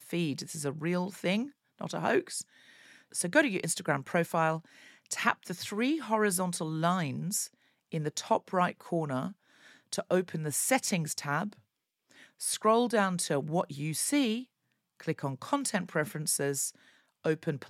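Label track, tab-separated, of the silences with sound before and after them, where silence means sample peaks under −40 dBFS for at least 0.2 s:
1.470000	1.810000	silence
2.420000	3.140000	silence
4.590000	5.110000	silence
7.460000	7.920000	silence
9.310000	9.930000	silence
11.530000	12.410000	silence
14.430000	15.000000	silence
16.700000	17.250000	silence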